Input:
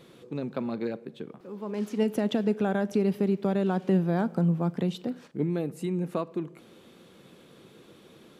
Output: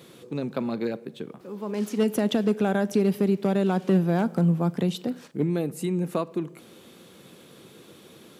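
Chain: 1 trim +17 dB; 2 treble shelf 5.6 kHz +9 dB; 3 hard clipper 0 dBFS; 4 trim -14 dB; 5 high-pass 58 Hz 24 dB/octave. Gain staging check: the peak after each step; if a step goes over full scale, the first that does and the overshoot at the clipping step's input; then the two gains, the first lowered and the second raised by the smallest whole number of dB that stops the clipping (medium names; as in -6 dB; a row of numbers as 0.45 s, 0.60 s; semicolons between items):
+3.0 dBFS, +3.5 dBFS, 0.0 dBFS, -14.0 dBFS, -11.0 dBFS; step 1, 3.5 dB; step 1 +13 dB, step 4 -10 dB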